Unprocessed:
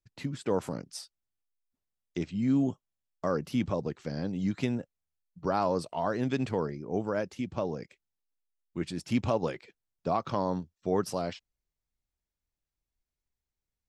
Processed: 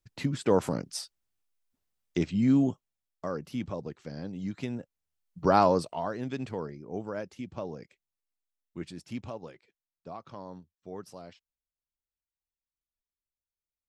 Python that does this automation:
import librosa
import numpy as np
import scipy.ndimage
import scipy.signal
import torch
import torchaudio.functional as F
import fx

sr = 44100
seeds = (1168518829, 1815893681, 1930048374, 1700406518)

y = fx.gain(x, sr, db=fx.line((2.35, 5.0), (3.34, -5.0), (4.67, -5.0), (5.58, 7.5), (6.16, -5.0), (8.8, -5.0), (9.46, -13.5)))